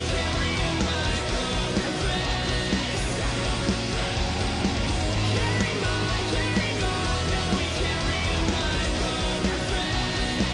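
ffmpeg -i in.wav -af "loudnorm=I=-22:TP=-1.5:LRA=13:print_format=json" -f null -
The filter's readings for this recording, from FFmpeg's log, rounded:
"input_i" : "-25.3",
"input_tp" : "-12.2",
"input_lra" : "0.9",
"input_thresh" : "-35.3",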